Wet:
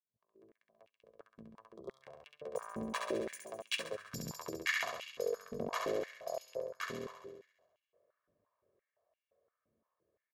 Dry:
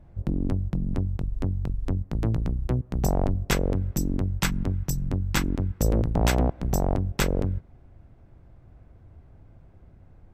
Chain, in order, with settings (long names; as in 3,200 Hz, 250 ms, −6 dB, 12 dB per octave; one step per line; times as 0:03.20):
fade in at the beginning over 2.53 s
source passing by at 0:04.06, 55 m/s, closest 6.3 metres
high-shelf EQ 8,200 Hz −8.5 dB
comb filter 1.8 ms, depth 79%
flutter between parallel walls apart 11.6 metres, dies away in 1.1 s
reversed playback
downward compressor 10 to 1, threshold −37 dBFS, peak gain reduction 17.5 dB
reversed playback
gain on a spectral selection 0:01.77–0:02.03, 1,400–3,200 Hz −25 dB
on a send at −22 dB: convolution reverb RT60 1.1 s, pre-delay 46 ms
on the sum: high-pass on a step sequencer 5.8 Hz 250–2,700 Hz
level +7 dB